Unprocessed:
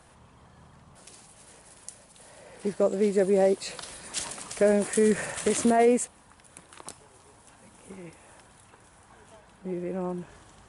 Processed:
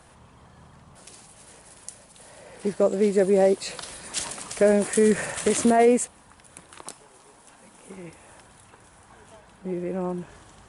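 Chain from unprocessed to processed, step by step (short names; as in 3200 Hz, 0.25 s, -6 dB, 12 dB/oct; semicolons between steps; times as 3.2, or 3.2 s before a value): 6.83–7.97 bell 82 Hz -14.5 dB 0.94 oct; gain +3 dB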